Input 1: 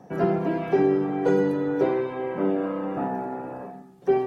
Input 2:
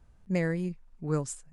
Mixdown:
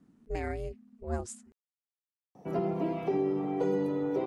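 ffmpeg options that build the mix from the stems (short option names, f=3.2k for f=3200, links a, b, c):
-filter_complex "[0:a]equalizer=f=1.6k:t=o:w=0.29:g=-13.5,adelay=2350,volume=-5.5dB[a];[1:a]aeval=exprs='val(0)*sin(2*PI*230*n/s)':c=same,volume=-2dB[b];[a][b]amix=inputs=2:normalize=0,alimiter=limit=-20.5dB:level=0:latency=1:release=147"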